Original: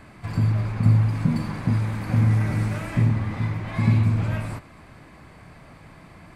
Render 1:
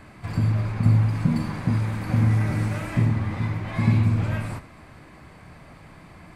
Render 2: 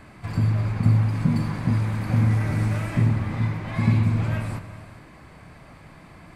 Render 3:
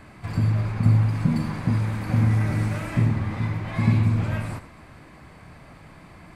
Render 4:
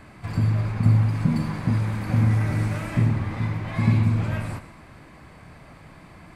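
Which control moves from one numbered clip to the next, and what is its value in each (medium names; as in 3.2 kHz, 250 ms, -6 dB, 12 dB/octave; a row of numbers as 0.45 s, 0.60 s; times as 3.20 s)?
gated-style reverb, gate: 90 ms, 470 ms, 140 ms, 220 ms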